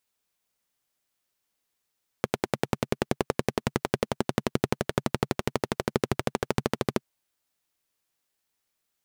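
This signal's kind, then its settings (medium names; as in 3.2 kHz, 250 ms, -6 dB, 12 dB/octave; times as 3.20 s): single-cylinder engine model, changing speed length 4.78 s, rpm 1200, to 1600, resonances 140/220/380 Hz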